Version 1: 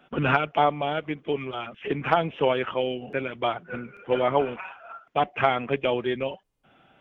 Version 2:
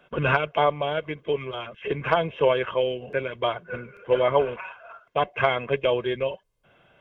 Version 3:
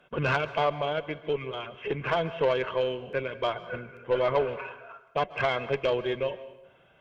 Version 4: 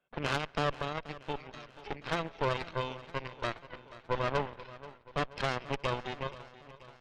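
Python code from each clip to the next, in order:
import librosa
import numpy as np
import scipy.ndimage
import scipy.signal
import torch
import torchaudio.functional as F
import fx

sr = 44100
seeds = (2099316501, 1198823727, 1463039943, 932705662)

y1 = x + 0.55 * np.pad(x, (int(1.9 * sr / 1000.0), 0))[:len(x)]
y2 = fx.tube_stage(y1, sr, drive_db=15.0, bias=0.25)
y2 = fx.rev_plate(y2, sr, seeds[0], rt60_s=0.92, hf_ratio=0.8, predelay_ms=120, drr_db=15.0)
y2 = y2 * librosa.db_to_amplitude(-2.0)
y3 = fx.cheby_harmonics(y2, sr, harmonics=(3, 4), levels_db=(-11, -12), full_scale_db=-14.5)
y3 = fx.echo_feedback(y3, sr, ms=481, feedback_pct=58, wet_db=-17.0)
y3 = y3 * librosa.db_to_amplitude(-4.5)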